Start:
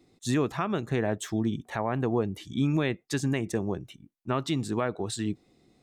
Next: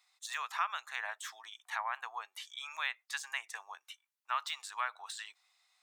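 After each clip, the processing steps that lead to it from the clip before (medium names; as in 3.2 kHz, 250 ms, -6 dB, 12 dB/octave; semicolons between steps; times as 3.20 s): de-esser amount 90%; steep high-pass 930 Hz 36 dB/octave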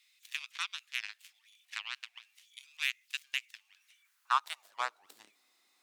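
jump at every zero crossing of -47 dBFS; Chebyshev shaper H 7 -16 dB, 8 -31 dB, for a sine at -19 dBFS; high-pass sweep 2.5 kHz -> 280 Hz, 3.76–5.23 s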